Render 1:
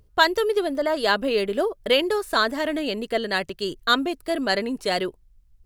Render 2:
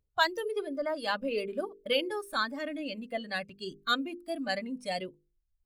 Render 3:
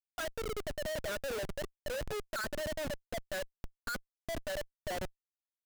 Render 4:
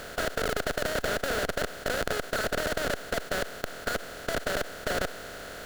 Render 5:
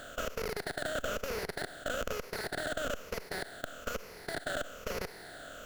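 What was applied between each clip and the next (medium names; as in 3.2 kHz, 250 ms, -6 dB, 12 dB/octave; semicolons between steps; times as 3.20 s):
spectral noise reduction 14 dB; hum notches 50/100/150/200/250/300/350/400/450/500 Hz; trim -8 dB
two resonant band-passes 930 Hz, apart 1.2 oct; Schmitt trigger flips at -45 dBFS; trim +4.5 dB
spectral levelling over time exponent 0.2
drifting ripple filter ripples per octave 0.83, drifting -1.1 Hz, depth 11 dB; on a send at -24 dB: reverberation RT60 4.4 s, pre-delay 28 ms; on the sum: trim -8.5 dB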